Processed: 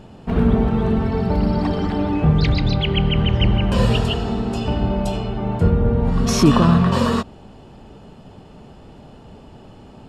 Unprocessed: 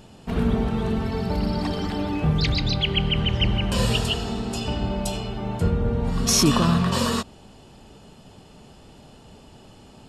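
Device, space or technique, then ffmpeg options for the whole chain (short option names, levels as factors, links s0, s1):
through cloth: -af "highshelf=f=3300:g=-15,volume=2"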